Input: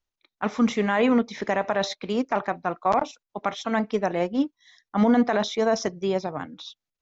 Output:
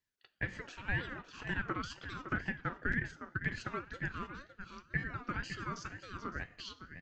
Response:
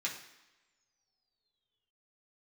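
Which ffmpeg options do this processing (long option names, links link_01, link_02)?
-filter_complex "[0:a]acompressor=threshold=-40dB:ratio=3,highpass=frequency=800:width_type=q:width=4.9,asplit=2[link_01][link_02];[link_02]adelay=559.8,volume=-9dB,highshelf=frequency=4000:gain=-12.6[link_03];[link_01][link_03]amix=inputs=2:normalize=0,asplit=2[link_04][link_05];[1:a]atrim=start_sample=2205,asetrate=52920,aresample=44100[link_06];[link_05][link_06]afir=irnorm=-1:irlink=0,volume=-6dB[link_07];[link_04][link_07]amix=inputs=2:normalize=0,aeval=exprs='val(0)*sin(2*PI*720*n/s+720*0.35/2*sin(2*PI*2*n/s))':channel_layout=same,volume=-3dB"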